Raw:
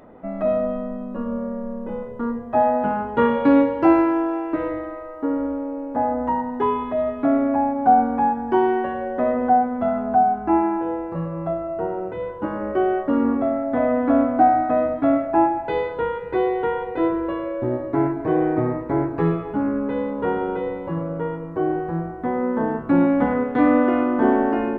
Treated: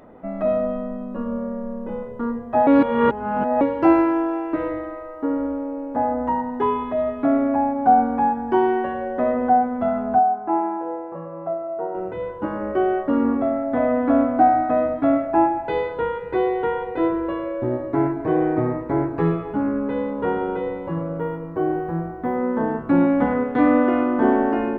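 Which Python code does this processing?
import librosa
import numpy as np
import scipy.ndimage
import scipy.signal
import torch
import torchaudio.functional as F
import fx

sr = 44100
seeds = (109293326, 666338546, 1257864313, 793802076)

y = fx.bandpass_q(x, sr, hz=710.0, q=0.95, at=(10.19, 11.95))
y = fx.resample_linear(y, sr, factor=3, at=(21.17, 22.36))
y = fx.edit(y, sr, fx.reverse_span(start_s=2.67, length_s=0.94), tone=tone)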